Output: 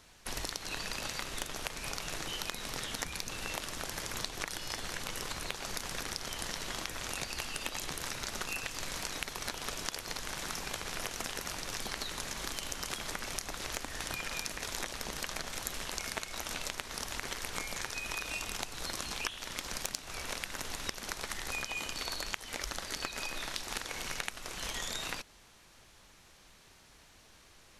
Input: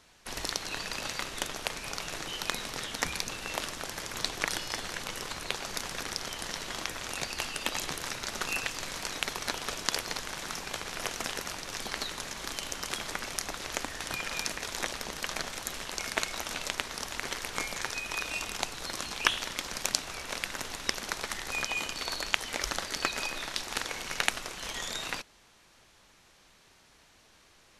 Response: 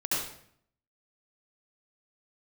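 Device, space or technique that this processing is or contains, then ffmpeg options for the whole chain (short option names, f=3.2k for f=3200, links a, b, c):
ASMR close-microphone chain: -af "lowshelf=f=120:g=6,acompressor=threshold=-34dB:ratio=6,highshelf=f=9.9k:g=5.5"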